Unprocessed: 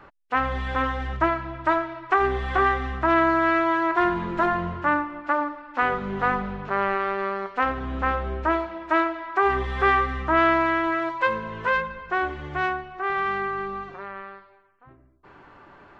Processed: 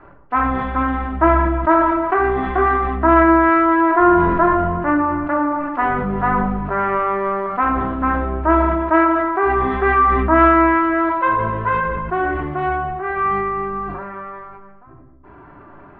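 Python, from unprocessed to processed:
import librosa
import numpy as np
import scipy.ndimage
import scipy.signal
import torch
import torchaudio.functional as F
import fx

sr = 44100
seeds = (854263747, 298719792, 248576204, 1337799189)

y = scipy.signal.sosfilt(scipy.signal.butter(2, 1500.0, 'lowpass', fs=sr, output='sos'), x)
y = fx.room_shoebox(y, sr, seeds[0], volume_m3=2100.0, walls='furnished', distance_m=3.0)
y = fx.sustainer(y, sr, db_per_s=26.0)
y = y * 10.0 ** (3.5 / 20.0)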